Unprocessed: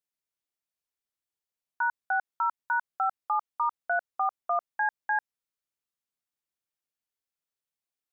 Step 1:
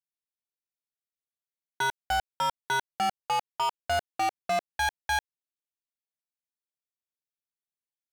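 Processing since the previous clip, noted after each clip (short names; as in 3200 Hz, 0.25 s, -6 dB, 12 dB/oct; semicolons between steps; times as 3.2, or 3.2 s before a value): bell 1200 Hz -11 dB 0.75 oct; sample leveller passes 5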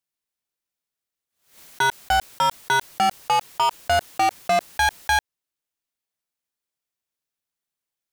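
backwards sustainer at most 130 dB/s; gain +7.5 dB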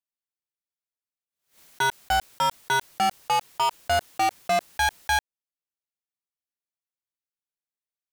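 sample leveller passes 1; upward expander 1.5:1, over -31 dBFS; gain -3.5 dB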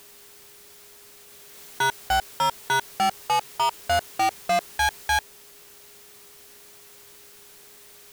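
zero-crossing step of -39 dBFS; whine 410 Hz -58 dBFS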